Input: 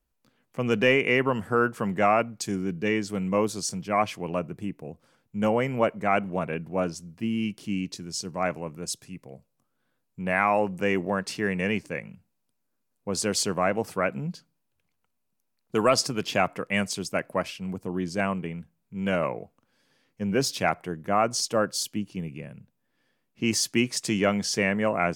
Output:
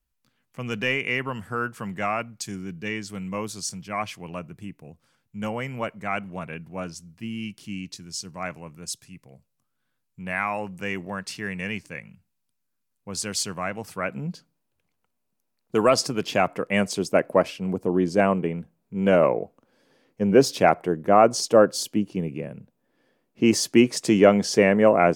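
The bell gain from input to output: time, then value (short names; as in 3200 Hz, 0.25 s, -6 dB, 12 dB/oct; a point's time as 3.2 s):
bell 440 Hz 2.4 oct
13.9 s -8.5 dB
14.3 s +3.5 dB
16.42 s +3.5 dB
17.08 s +10.5 dB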